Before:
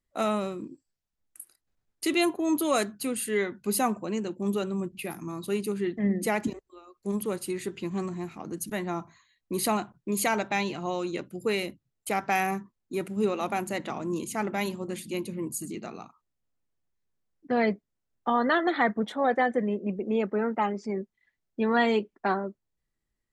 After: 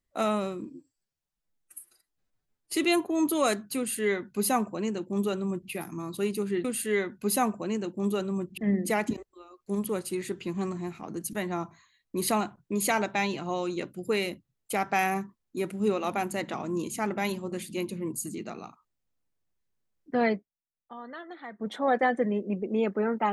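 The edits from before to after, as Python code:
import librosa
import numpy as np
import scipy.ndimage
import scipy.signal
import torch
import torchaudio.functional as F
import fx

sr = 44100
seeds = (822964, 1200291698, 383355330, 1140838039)

y = fx.edit(x, sr, fx.stretch_span(start_s=0.65, length_s=1.41, factor=1.5),
    fx.duplicate(start_s=3.07, length_s=1.93, to_s=5.94),
    fx.fade_down_up(start_s=17.63, length_s=1.49, db=-18.0, fade_s=0.21), tone=tone)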